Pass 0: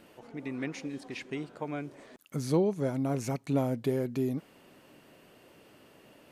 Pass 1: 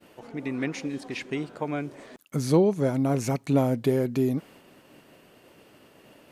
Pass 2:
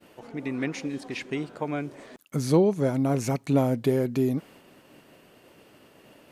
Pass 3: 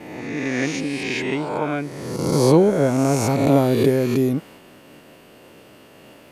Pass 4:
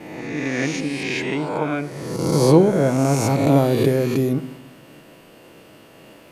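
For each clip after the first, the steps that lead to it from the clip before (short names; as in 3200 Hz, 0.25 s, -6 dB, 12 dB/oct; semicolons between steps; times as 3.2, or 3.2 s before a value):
expander -53 dBFS; gain +6 dB
nothing audible
spectral swells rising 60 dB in 1.44 s; gain +4.5 dB
reverb RT60 0.75 s, pre-delay 6 ms, DRR 11.5 dB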